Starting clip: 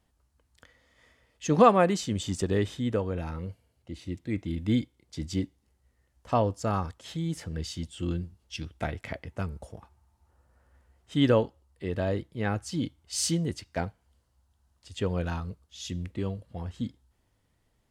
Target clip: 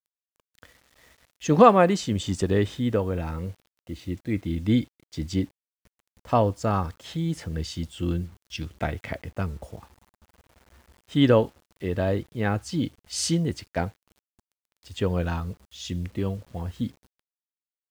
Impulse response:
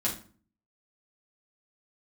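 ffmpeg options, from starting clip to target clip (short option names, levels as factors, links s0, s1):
-af "highshelf=f=8300:g=-8.5,acrusher=bits=9:mix=0:aa=0.000001,volume=1.58"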